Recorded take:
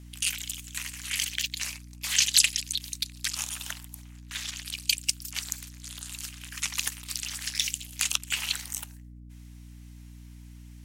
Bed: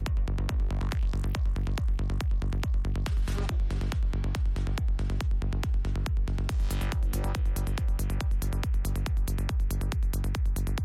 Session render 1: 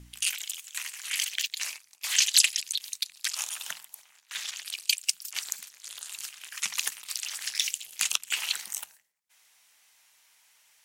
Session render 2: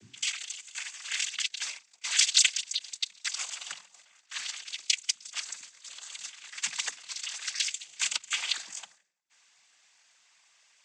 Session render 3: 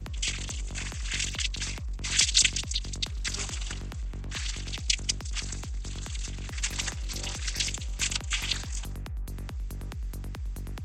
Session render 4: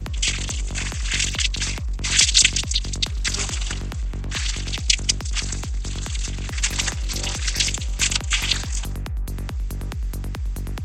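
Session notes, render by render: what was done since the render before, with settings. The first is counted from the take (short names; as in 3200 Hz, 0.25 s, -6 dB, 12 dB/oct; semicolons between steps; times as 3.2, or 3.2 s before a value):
de-hum 60 Hz, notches 5
noise vocoder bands 16
add bed -8 dB
gain +8.5 dB; limiter -1 dBFS, peak gain reduction 2.5 dB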